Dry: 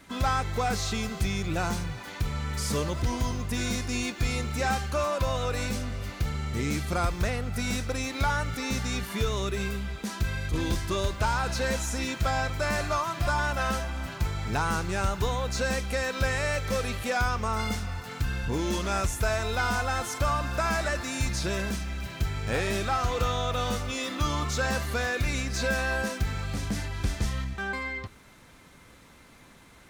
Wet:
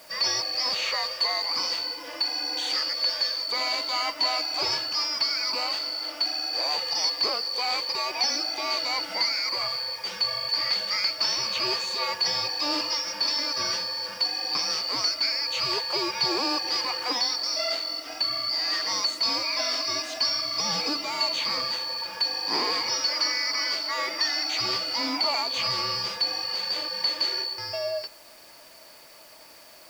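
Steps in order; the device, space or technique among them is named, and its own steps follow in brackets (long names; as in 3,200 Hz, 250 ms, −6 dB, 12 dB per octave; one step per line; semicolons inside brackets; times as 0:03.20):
split-band scrambled radio (band-splitting scrambler in four parts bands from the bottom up 2341; band-pass filter 370–3,400 Hz; white noise bed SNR 26 dB)
level +7 dB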